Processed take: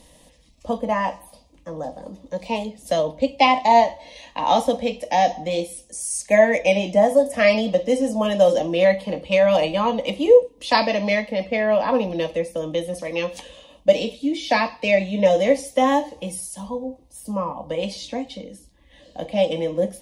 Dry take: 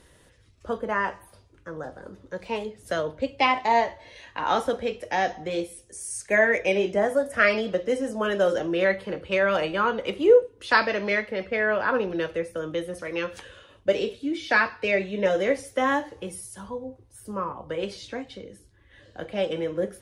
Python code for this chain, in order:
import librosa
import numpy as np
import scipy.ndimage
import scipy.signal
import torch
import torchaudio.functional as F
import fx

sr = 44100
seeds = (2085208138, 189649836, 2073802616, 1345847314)

y = fx.peak_eq(x, sr, hz=9000.0, db=-2.0, octaves=0.23)
y = fx.fixed_phaser(y, sr, hz=390.0, stages=6)
y = y * librosa.db_to_amplitude(8.5)